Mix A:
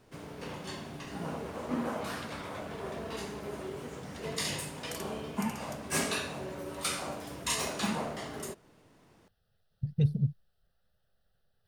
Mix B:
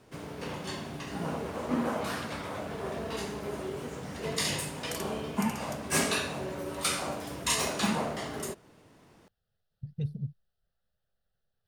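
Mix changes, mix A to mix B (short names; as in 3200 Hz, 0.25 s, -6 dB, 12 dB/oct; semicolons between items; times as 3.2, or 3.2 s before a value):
speech -7.0 dB; first sound +3.5 dB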